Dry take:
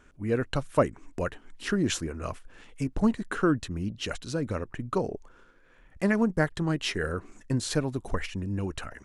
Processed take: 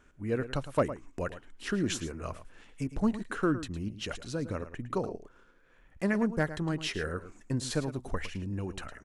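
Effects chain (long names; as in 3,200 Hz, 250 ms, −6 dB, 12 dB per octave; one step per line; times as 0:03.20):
single-tap delay 109 ms −13 dB
hard clipping −12.5 dBFS, distortion −34 dB
level −4 dB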